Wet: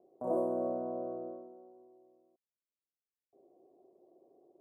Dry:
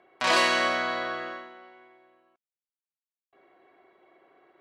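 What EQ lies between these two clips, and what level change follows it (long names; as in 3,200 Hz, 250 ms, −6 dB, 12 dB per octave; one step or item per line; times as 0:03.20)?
inverse Chebyshev band-stop filter 2,100–4,700 Hz, stop band 80 dB
high-frequency loss of the air 71 metres
low-shelf EQ 100 Hz −11 dB
0.0 dB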